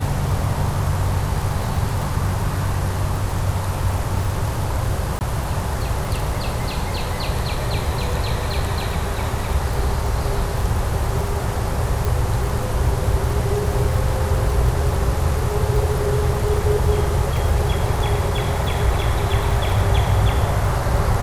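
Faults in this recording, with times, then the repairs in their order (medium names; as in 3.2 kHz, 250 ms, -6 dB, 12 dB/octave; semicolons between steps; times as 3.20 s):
crackle 35 per s -25 dBFS
5.19–5.21 s: dropout 19 ms
12.05 s: pop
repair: de-click; interpolate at 5.19 s, 19 ms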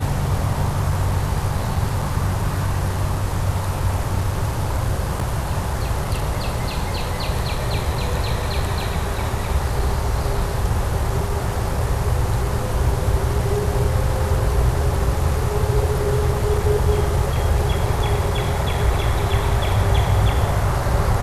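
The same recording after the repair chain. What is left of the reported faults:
nothing left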